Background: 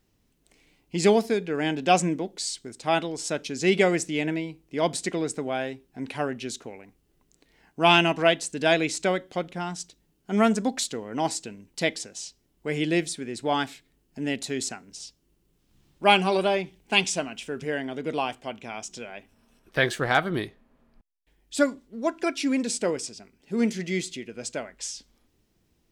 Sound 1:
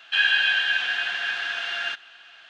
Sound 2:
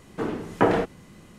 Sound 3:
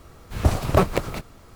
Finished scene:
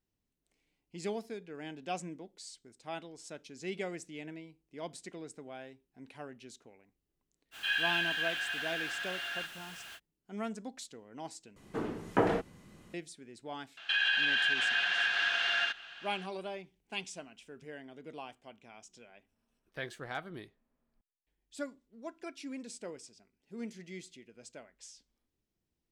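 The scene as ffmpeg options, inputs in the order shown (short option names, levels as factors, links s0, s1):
-filter_complex "[1:a]asplit=2[s0][s1];[0:a]volume=0.133[s2];[s0]aeval=exprs='val(0)+0.5*0.0237*sgn(val(0))':c=same[s3];[s1]alimiter=limit=0.112:level=0:latency=1:release=138[s4];[s2]asplit=2[s5][s6];[s5]atrim=end=11.564[s7];[2:a]atrim=end=1.38,asetpts=PTS-STARTPTS,volume=0.422[s8];[s6]atrim=start=12.936[s9];[s3]atrim=end=2.49,asetpts=PTS-STARTPTS,volume=0.251,afade=t=in:d=0.05,afade=t=out:st=2.44:d=0.05,adelay=7510[s10];[s4]atrim=end=2.49,asetpts=PTS-STARTPTS,volume=0.891,afade=t=in:d=0.004:c=hsin,afade=t=out:st=2.486:d=0.004:c=hsin,adelay=13770[s11];[s7][s8]acrossfade=d=0.004:c1=hsin:c2=hsin[s12];[s12][s9]acrossfade=d=0.004:c1=hsin:c2=hsin[s13];[s13][s10][s11]amix=inputs=3:normalize=0"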